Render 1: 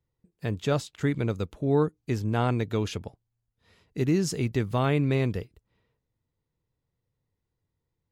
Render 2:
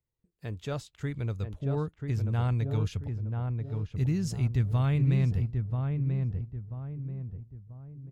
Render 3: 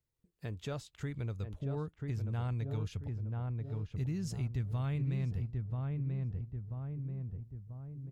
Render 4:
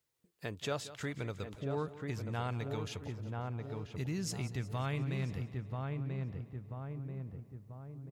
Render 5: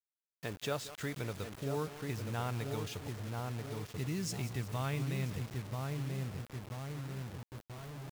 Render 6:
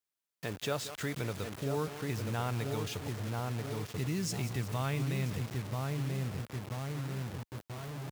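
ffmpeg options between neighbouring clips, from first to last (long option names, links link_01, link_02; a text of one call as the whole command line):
ffmpeg -i in.wav -filter_complex "[0:a]asubboost=boost=11:cutoff=110,asplit=2[link_01][link_02];[link_02]adelay=987,lowpass=frequency=1100:poles=1,volume=-4dB,asplit=2[link_03][link_04];[link_04]adelay=987,lowpass=frequency=1100:poles=1,volume=0.41,asplit=2[link_05][link_06];[link_06]adelay=987,lowpass=frequency=1100:poles=1,volume=0.41,asplit=2[link_07][link_08];[link_08]adelay=987,lowpass=frequency=1100:poles=1,volume=0.41,asplit=2[link_09][link_10];[link_10]adelay=987,lowpass=frequency=1100:poles=1,volume=0.41[link_11];[link_03][link_05][link_07][link_09][link_11]amix=inputs=5:normalize=0[link_12];[link_01][link_12]amix=inputs=2:normalize=0,volume=-8.5dB" out.wav
ffmpeg -i in.wav -af "acompressor=threshold=-39dB:ratio=2" out.wav
ffmpeg -i in.wav -af "highpass=frequency=450:poles=1,aecho=1:1:180|360|540|720|900:0.168|0.0923|0.0508|0.0279|0.0154,volume=7.5dB" out.wav
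ffmpeg -i in.wav -af "acrusher=bits=7:mix=0:aa=0.000001" out.wav
ffmpeg -i in.wav -filter_complex "[0:a]highpass=63,asplit=2[link_01][link_02];[link_02]alimiter=level_in=10dB:limit=-24dB:level=0:latency=1,volume=-10dB,volume=-3dB[link_03];[link_01][link_03]amix=inputs=2:normalize=0" out.wav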